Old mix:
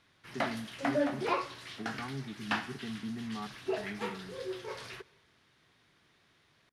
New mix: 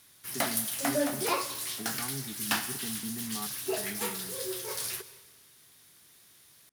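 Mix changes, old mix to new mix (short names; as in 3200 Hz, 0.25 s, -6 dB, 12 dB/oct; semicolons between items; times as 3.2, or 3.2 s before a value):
background: send +9.0 dB; master: remove LPF 2700 Hz 12 dB/oct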